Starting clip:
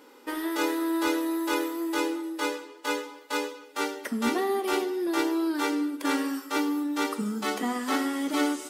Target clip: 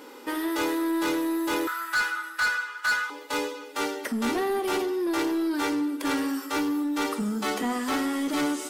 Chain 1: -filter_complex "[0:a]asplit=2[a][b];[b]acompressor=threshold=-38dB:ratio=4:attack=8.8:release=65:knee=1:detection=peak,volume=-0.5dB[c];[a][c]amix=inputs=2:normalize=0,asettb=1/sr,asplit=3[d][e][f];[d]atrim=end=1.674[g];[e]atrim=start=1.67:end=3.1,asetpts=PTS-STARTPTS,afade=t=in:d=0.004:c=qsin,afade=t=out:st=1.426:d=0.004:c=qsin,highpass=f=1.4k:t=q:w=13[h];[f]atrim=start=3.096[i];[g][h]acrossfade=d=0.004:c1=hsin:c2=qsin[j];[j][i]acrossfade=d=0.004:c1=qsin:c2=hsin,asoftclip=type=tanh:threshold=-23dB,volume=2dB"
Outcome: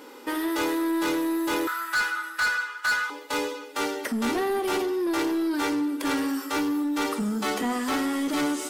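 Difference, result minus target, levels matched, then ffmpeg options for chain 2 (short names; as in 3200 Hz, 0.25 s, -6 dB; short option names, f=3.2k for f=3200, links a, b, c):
compressor: peak gain reduction -7 dB
-filter_complex "[0:a]asplit=2[a][b];[b]acompressor=threshold=-47.5dB:ratio=4:attack=8.8:release=65:knee=1:detection=peak,volume=-0.5dB[c];[a][c]amix=inputs=2:normalize=0,asettb=1/sr,asplit=3[d][e][f];[d]atrim=end=1.674[g];[e]atrim=start=1.67:end=3.1,asetpts=PTS-STARTPTS,afade=t=in:d=0.004:c=qsin,afade=t=out:st=1.426:d=0.004:c=qsin,highpass=f=1.4k:t=q:w=13[h];[f]atrim=start=3.096[i];[g][h]acrossfade=d=0.004:c1=hsin:c2=qsin[j];[j][i]acrossfade=d=0.004:c1=qsin:c2=hsin,asoftclip=type=tanh:threshold=-23dB,volume=2dB"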